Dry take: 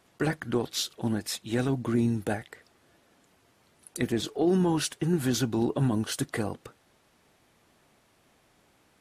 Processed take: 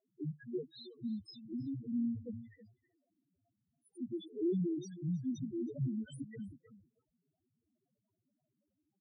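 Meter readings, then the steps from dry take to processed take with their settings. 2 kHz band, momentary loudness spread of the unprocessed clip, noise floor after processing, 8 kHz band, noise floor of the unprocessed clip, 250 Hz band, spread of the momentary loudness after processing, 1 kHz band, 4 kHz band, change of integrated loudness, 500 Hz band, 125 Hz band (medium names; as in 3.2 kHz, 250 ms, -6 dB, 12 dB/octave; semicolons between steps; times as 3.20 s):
under -25 dB, 8 LU, under -85 dBFS, under -25 dB, -65 dBFS, -9.5 dB, 13 LU, under -40 dB, -22.0 dB, -11.5 dB, -13.0 dB, -11.5 dB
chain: loudest bins only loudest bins 1; echo from a far wall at 55 m, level -15 dB; trim -3.5 dB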